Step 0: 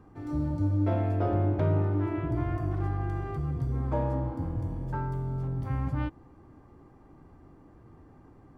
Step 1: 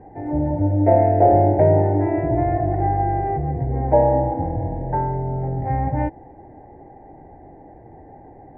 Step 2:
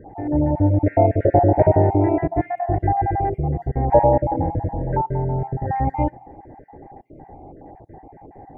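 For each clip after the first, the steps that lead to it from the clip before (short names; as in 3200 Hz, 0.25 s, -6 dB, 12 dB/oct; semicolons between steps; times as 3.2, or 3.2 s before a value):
EQ curve 250 Hz 0 dB, 820 Hz +15 dB, 1200 Hz -20 dB, 1900 Hz +7 dB, 3300 Hz -24 dB; gain +6.5 dB
random spectral dropouts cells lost 35%; on a send at -22.5 dB: reverb RT60 0.60 s, pre-delay 3 ms; on the sum: gain +2.5 dB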